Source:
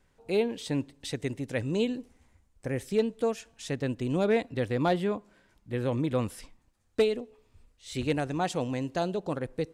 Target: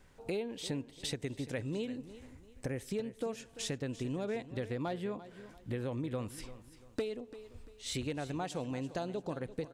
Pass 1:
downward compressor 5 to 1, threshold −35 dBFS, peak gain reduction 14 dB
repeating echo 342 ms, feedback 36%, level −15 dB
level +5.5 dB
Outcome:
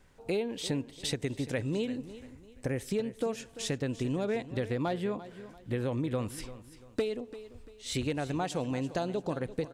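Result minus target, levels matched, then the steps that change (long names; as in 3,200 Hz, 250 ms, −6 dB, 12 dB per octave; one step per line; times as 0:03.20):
downward compressor: peak gain reduction −5 dB
change: downward compressor 5 to 1, threshold −41.5 dBFS, peak gain reduction 19 dB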